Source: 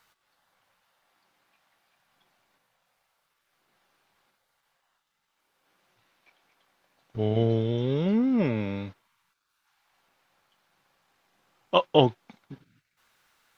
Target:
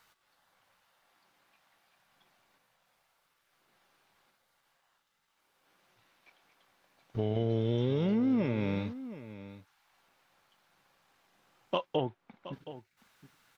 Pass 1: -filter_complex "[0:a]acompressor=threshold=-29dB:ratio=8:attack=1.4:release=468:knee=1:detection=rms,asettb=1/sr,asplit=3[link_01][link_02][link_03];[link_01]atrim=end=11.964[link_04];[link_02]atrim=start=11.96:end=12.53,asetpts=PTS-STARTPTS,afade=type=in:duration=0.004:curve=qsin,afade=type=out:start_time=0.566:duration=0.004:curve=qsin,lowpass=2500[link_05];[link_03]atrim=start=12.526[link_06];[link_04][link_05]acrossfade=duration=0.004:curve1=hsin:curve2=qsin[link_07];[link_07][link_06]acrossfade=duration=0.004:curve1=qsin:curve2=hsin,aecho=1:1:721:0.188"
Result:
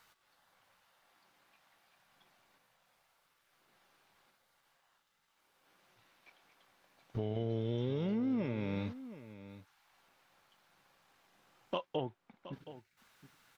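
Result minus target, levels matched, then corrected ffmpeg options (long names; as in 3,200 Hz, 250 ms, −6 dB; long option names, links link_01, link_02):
downward compressor: peak gain reduction +5.5 dB
-filter_complex "[0:a]acompressor=threshold=-22.5dB:ratio=8:attack=1.4:release=468:knee=1:detection=rms,asettb=1/sr,asplit=3[link_01][link_02][link_03];[link_01]atrim=end=11.964[link_04];[link_02]atrim=start=11.96:end=12.53,asetpts=PTS-STARTPTS,afade=type=in:duration=0.004:curve=qsin,afade=type=out:start_time=0.566:duration=0.004:curve=qsin,lowpass=2500[link_05];[link_03]atrim=start=12.526[link_06];[link_04][link_05]acrossfade=duration=0.004:curve1=hsin:curve2=qsin[link_07];[link_07][link_06]acrossfade=duration=0.004:curve1=qsin:curve2=hsin,aecho=1:1:721:0.188"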